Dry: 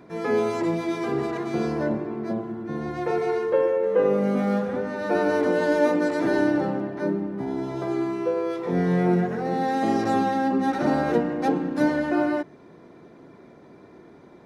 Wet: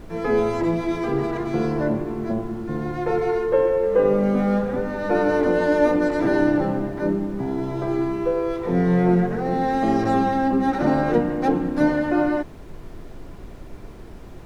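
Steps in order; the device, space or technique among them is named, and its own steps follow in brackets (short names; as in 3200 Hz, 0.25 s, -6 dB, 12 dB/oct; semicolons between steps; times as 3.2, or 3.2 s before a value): car interior (bell 120 Hz +5 dB 0.64 oct; high shelf 3600 Hz -6 dB; brown noise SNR 16 dB); gain +2.5 dB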